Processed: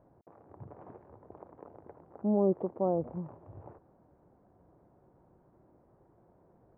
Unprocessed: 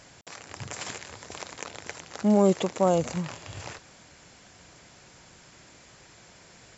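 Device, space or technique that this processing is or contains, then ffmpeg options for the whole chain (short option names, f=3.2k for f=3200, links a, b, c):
under water: -af "lowpass=f=930:w=0.5412,lowpass=f=930:w=1.3066,equalizer=f=350:t=o:w=0.57:g=4.5,volume=-8dB"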